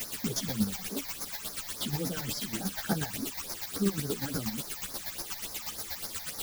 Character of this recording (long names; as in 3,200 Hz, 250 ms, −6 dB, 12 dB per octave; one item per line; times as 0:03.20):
a quantiser's noise floor 6 bits, dither triangular
phaser sweep stages 8, 3.5 Hz, lowest notch 360–3,000 Hz
chopped level 8.3 Hz, depth 60%, duty 25%
a shimmering, thickened sound